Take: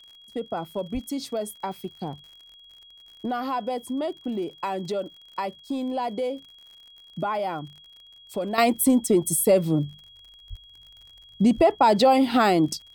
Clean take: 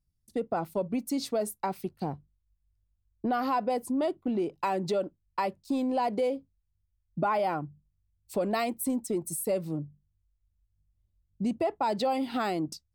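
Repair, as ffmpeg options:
-filter_complex "[0:a]adeclick=t=4,bandreject=f=3.3k:w=30,asplit=3[a][b][c];[a]afade=t=out:st=0.93:d=0.02[d];[b]highpass=f=140:w=0.5412,highpass=f=140:w=1.3066,afade=t=in:st=0.93:d=0.02,afade=t=out:st=1.05:d=0.02[e];[c]afade=t=in:st=1.05:d=0.02[f];[d][e][f]amix=inputs=3:normalize=0,asplit=3[g][h][i];[g]afade=t=out:st=10.49:d=0.02[j];[h]highpass=f=140:w=0.5412,highpass=f=140:w=1.3066,afade=t=in:st=10.49:d=0.02,afade=t=out:st=10.61:d=0.02[k];[i]afade=t=in:st=10.61:d=0.02[l];[j][k][l]amix=inputs=3:normalize=0,asplit=3[m][n][o];[m]afade=t=out:st=11.56:d=0.02[p];[n]highpass=f=140:w=0.5412,highpass=f=140:w=1.3066,afade=t=in:st=11.56:d=0.02,afade=t=out:st=11.68:d=0.02[q];[o]afade=t=in:st=11.68:d=0.02[r];[p][q][r]amix=inputs=3:normalize=0,asetnsamples=n=441:p=0,asendcmd='8.58 volume volume -10.5dB',volume=0dB"

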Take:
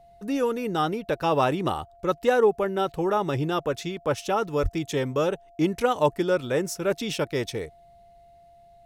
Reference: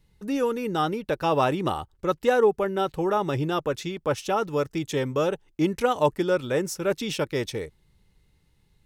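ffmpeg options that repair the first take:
-filter_complex "[0:a]bandreject=f=690:w=30,asplit=3[a][b][c];[a]afade=t=out:st=4.62:d=0.02[d];[b]highpass=f=140:w=0.5412,highpass=f=140:w=1.3066,afade=t=in:st=4.62:d=0.02,afade=t=out:st=4.74:d=0.02[e];[c]afade=t=in:st=4.74:d=0.02[f];[d][e][f]amix=inputs=3:normalize=0"

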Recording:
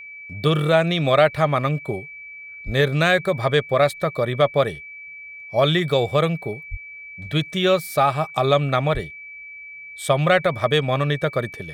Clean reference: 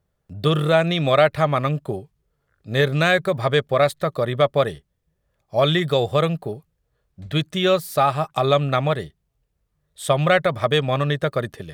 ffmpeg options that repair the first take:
-filter_complex "[0:a]bandreject=f=2.3k:w=30,asplit=3[a][b][c];[a]afade=t=out:st=2.65:d=0.02[d];[b]highpass=f=140:w=0.5412,highpass=f=140:w=1.3066,afade=t=in:st=2.65:d=0.02,afade=t=out:st=2.77:d=0.02[e];[c]afade=t=in:st=2.77:d=0.02[f];[d][e][f]amix=inputs=3:normalize=0,asplit=3[g][h][i];[g]afade=t=out:st=6.7:d=0.02[j];[h]highpass=f=140:w=0.5412,highpass=f=140:w=1.3066,afade=t=in:st=6.7:d=0.02,afade=t=out:st=6.82:d=0.02[k];[i]afade=t=in:st=6.82:d=0.02[l];[j][k][l]amix=inputs=3:normalize=0,asplit=3[m][n][o];[m]afade=t=out:st=8.93:d=0.02[p];[n]highpass=f=140:w=0.5412,highpass=f=140:w=1.3066,afade=t=in:st=8.93:d=0.02,afade=t=out:st=9.05:d=0.02[q];[o]afade=t=in:st=9.05:d=0.02[r];[p][q][r]amix=inputs=3:normalize=0"

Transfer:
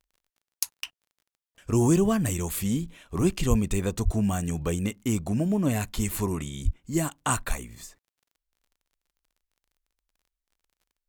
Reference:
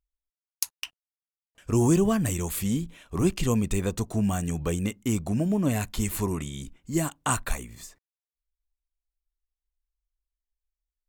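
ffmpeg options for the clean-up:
-filter_complex "[0:a]adeclick=t=4,asplit=3[a][b][c];[a]afade=t=out:st=3.49:d=0.02[d];[b]highpass=f=140:w=0.5412,highpass=f=140:w=1.3066,afade=t=in:st=3.49:d=0.02,afade=t=out:st=3.61:d=0.02[e];[c]afade=t=in:st=3.61:d=0.02[f];[d][e][f]amix=inputs=3:normalize=0,asplit=3[g][h][i];[g]afade=t=out:st=4.04:d=0.02[j];[h]highpass=f=140:w=0.5412,highpass=f=140:w=1.3066,afade=t=in:st=4.04:d=0.02,afade=t=out:st=4.16:d=0.02[k];[i]afade=t=in:st=4.16:d=0.02[l];[j][k][l]amix=inputs=3:normalize=0,asplit=3[m][n][o];[m]afade=t=out:st=6.64:d=0.02[p];[n]highpass=f=140:w=0.5412,highpass=f=140:w=1.3066,afade=t=in:st=6.64:d=0.02,afade=t=out:st=6.76:d=0.02[q];[o]afade=t=in:st=6.76:d=0.02[r];[p][q][r]amix=inputs=3:normalize=0"

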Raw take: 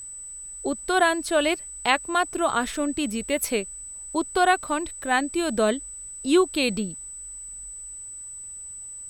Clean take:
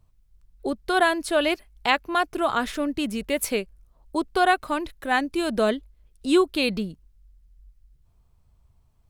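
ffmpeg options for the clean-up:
-af "bandreject=f=8k:w=30,agate=range=-21dB:threshold=-31dB"

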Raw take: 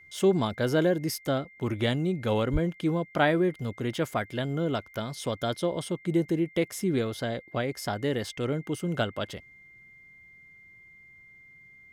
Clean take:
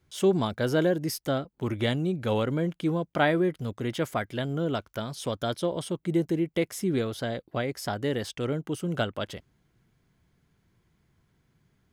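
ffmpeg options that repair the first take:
-filter_complex "[0:a]bandreject=f=2.1k:w=30,asplit=3[a][b][c];[a]afade=t=out:st=2.52:d=0.02[d];[b]highpass=f=140:w=0.5412,highpass=f=140:w=1.3066,afade=t=in:st=2.52:d=0.02,afade=t=out:st=2.64:d=0.02[e];[c]afade=t=in:st=2.64:d=0.02[f];[d][e][f]amix=inputs=3:normalize=0"

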